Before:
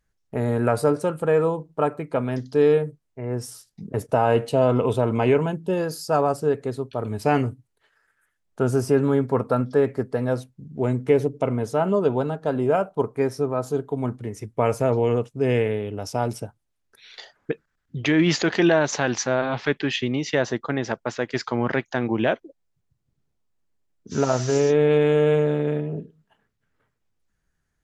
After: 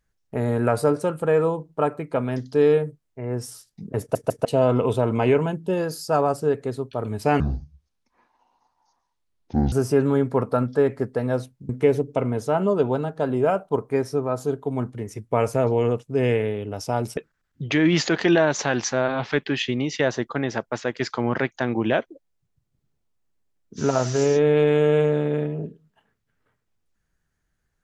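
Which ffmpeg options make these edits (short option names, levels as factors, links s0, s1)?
-filter_complex "[0:a]asplit=8[s0][s1][s2][s3][s4][s5][s6][s7];[s0]atrim=end=4.152[s8];[s1]atrim=start=3.998:end=4.152[s9];[s2]atrim=start=3.998:end=4.152[s10];[s3]atrim=start=4.448:end=7.404[s11];[s4]atrim=start=7.4:end=8.7,asetpts=PTS-STARTPTS,asetrate=24696,aresample=44100[s12];[s5]atrim=start=8.696:end=10.672[s13];[s6]atrim=start=10.948:end=16.432[s14];[s7]atrim=start=17.508[s15];[s8][s9]acrossfade=d=0.004:c1=hsin:c2=hsin[s16];[s16][s10]acrossfade=d=0.004:c1=hsin:c2=hsin[s17];[s17][s11]acrossfade=d=0.004:c1=hsin:c2=hsin[s18];[s18][s12]acrossfade=d=0.004:c1=hsin:c2=hsin[s19];[s19][s13]acrossfade=d=0.004:c1=hsin:c2=hsin[s20];[s20][s14]acrossfade=d=0.004:c1=hsin:c2=hsin[s21];[s21][s15]acrossfade=d=0.004:c1=hsin:c2=hsin"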